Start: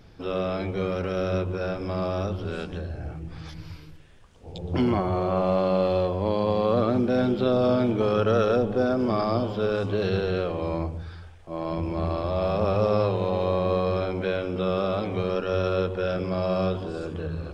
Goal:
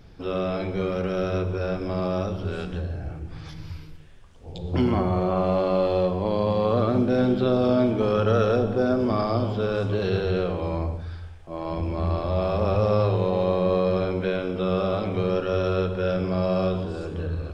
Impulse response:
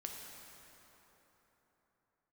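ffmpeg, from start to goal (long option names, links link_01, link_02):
-filter_complex "[0:a]asplit=2[link_01][link_02];[1:a]atrim=start_sample=2205,afade=type=out:start_time=0.24:duration=0.01,atrim=end_sample=11025,lowshelf=frequency=130:gain=7.5[link_03];[link_02][link_03]afir=irnorm=-1:irlink=0,volume=4dB[link_04];[link_01][link_04]amix=inputs=2:normalize=0,volume=-6dB"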